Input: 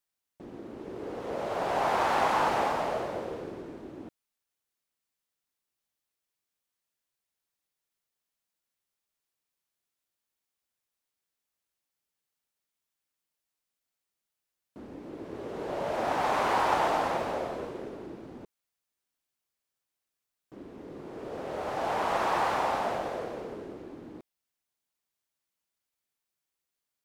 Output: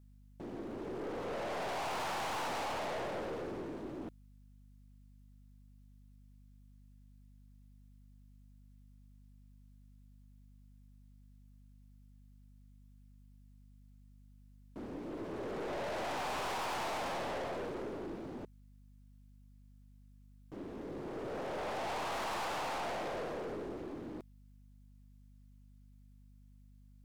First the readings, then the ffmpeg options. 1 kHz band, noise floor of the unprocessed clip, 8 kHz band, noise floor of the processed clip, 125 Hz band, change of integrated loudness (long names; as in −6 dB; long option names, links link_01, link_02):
−10.0 dB, below −85 dBFS, −2.0 dB, −59 dBFS, −3.5 dB, −9.5 dB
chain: -af "aeval=exprs='val(0)+0.001*(sin(2*PI*50*n/s)+sin(2*PI*2*50*n/s)/2+sin(2*PI*3*50*n/s)/3+sin(2*PI*4*50*n/s)/4+sin(2*PI*5*50*n/s)/5)':channel_layout=same,aeval=exprs='(tanh(89.1*val(0)+0.25)-tanh(0.25))/89.1':channel_layout=same,volume=2.5dB"